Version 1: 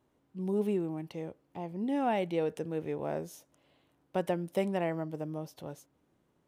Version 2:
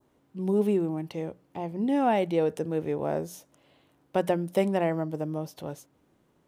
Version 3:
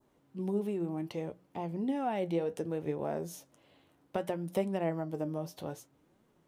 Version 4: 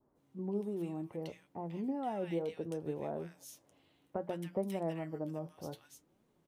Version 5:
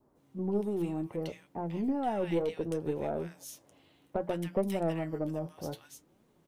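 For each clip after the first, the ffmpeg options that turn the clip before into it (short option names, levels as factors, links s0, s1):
-af "bandreject=f=60:t=h:w=6,bandreject=f=120:t=h:w=6,bandreject=f=180:t=h:w=6,adynamicequalizer=threshold=0.00224:dfrequency=2500:dqfactor=1.1:tfrequency=2500:tqfactor=1.1:attack=5:release=100:ratio=0.375:range=2.5:mode=cutabove:tftype=bell,volume=2"
-af "acompressor=threshold=0.0398:ratio=4,flanger=delay=4.2:depth=7.9:regen=65:speed=0.64:shape=triangular,volume=1.26"
-filter_complex "[0:a]acrossover=split=1500[s0][s1];[s1]adelay=150[s2];[s0][s2]amix=inputs=2:normalize=0,volume=0.631"
-af "aeval=exprs='0.075*(cos(1*acos(clip(val(0)/0.075,-1,1)))-cos(1*PI/2))+0.0119*(cos(2*acos(clip(val(0)/0.075,-1,1)))-cos(2*PI/2))+0.0015*(cos(6*acos(clip(val(0)/0.075,-1,1)))-cos(6*PI/2))':c=same,volume=2"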